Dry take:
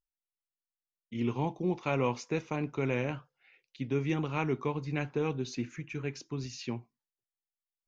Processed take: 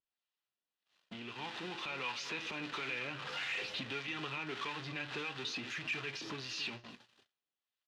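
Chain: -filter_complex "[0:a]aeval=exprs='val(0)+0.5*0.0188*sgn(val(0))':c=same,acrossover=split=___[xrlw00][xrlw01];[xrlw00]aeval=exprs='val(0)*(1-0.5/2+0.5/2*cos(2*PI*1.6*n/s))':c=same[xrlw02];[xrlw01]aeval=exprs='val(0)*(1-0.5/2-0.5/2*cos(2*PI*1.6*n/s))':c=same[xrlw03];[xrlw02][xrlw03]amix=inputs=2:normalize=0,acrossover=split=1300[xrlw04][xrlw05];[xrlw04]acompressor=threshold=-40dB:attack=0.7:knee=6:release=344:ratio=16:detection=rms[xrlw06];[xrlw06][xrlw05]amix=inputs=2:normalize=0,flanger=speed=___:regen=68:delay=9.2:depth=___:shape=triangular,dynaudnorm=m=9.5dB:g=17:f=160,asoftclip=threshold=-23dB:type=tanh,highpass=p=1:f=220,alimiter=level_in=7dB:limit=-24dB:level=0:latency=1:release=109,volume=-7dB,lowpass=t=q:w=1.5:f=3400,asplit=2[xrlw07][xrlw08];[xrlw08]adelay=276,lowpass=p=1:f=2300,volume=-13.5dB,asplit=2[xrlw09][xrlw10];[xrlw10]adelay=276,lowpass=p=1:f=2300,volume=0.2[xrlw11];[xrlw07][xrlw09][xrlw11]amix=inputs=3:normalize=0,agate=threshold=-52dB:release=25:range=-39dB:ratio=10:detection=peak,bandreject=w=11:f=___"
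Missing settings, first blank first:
750, 0.5, 1.2, 2200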